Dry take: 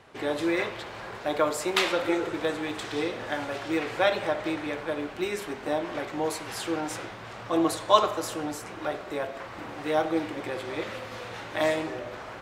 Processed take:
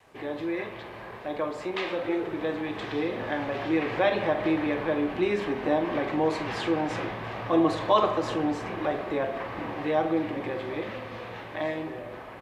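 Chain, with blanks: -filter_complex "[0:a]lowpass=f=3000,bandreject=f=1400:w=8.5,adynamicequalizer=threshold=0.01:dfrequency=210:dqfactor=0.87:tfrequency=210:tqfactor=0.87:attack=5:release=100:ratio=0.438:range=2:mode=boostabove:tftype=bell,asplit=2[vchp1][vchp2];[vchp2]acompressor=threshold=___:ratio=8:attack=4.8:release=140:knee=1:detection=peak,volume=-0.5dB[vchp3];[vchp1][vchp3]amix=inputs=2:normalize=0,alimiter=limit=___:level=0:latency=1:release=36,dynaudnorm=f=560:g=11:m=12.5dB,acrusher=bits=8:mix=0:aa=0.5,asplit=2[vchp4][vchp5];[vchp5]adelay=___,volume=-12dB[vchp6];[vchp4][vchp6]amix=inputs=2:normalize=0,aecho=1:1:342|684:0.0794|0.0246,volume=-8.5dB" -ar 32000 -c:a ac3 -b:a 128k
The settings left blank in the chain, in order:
-33dB, -10dB, 44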